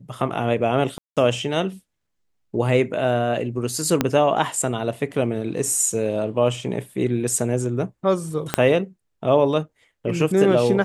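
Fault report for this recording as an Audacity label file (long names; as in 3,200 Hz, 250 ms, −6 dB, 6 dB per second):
0.980000	1.170000	drop-out 187 ms
4.010000	4.010000	click −4 dBFS
8.540000	8.540000	click −3 dBFS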